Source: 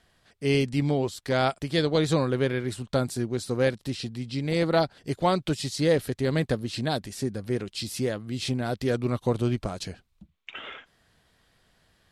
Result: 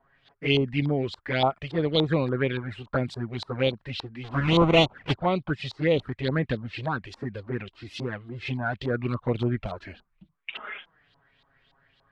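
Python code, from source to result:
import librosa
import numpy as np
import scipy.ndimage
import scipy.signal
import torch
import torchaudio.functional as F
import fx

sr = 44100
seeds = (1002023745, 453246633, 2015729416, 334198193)

y = fx.halfwave_hold(x, sr, at=(4.23, 5.15), fade=0.02)
y = fx.env_flanger(y, sr, rest_ms=7.5, full_db=-19.0)
y = fx.filter_lfo_lowpass(y, sr, shape='saw_up', hz=3.5, low_hz=880.0, high_hz=4000.0, q=4.1)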